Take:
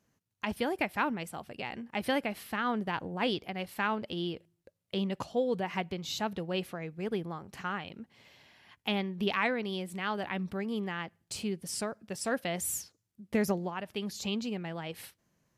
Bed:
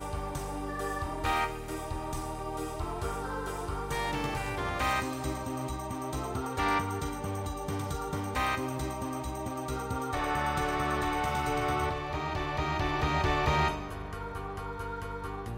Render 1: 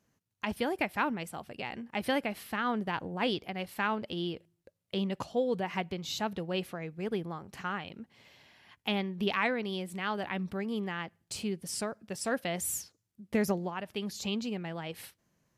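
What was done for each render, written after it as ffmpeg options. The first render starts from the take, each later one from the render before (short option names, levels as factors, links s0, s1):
-af anull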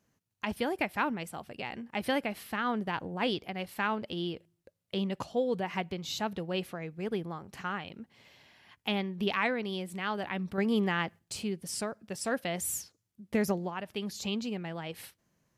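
-filter_complex "[0:a]asplit=3[s0][s1][s2];[s0]atrim=end=10.582[s3];[s1]atrim=start=10.578:end=11.192,asetpts=PTS-STARTPTS,volume=2.11[s4];[s2]atrim=start=11.188[s5];[s3][s4]acrossfade=d=0.004:c1=hsin:c2=hsin[s6];[s6][s5]acrossfade=d=0.004:c1=hsin:c2=hsin"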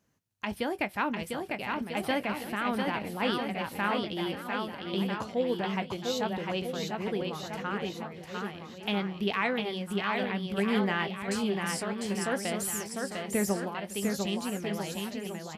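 -filter_complex "[0:a]asplit=2[s0][s1];[s1]adelay=20,volume=0.224[s2];[s0][s2]amix=inputs=2:normalize=0,aecho=1:1:700|1295|1801|2231|2596:0.631|0.398|0.251|0.158|0.1"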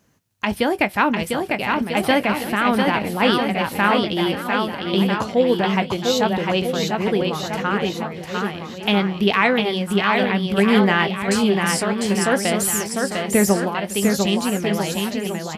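-af "volume=3.98"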